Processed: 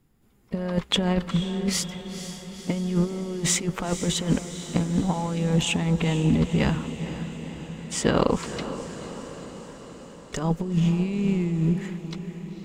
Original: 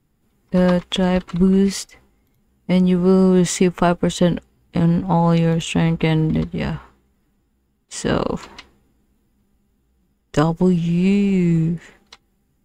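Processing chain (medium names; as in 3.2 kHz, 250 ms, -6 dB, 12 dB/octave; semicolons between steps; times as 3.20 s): compressor with a negative ratio -19 dBFS, ratio -0.5; harmony voices +3 st -16 dB; echo that smears into a reverb 486 ms, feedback 65%, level -11 dB; trim -3.5 dB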